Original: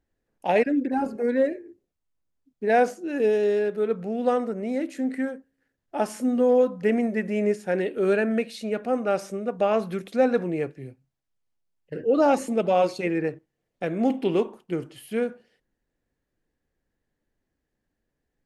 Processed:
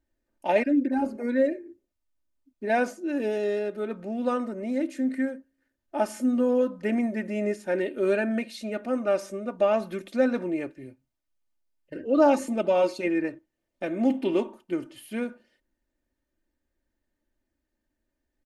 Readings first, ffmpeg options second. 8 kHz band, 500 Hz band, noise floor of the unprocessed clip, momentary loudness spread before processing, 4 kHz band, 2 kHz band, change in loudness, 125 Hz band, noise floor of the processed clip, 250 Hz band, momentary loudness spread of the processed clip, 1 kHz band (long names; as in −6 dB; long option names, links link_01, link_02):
−1.5 dB, −3.0 dB, −81 dBFS, 10 LU, −2.0 dB, −1.5 dB, −2.0 dB, −6.0 dB, −82 dBFS, −0.5 dB, 11 LU, −3.5 dB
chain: -af "aecho=1:1:3.3:0.66,volume=-3dB"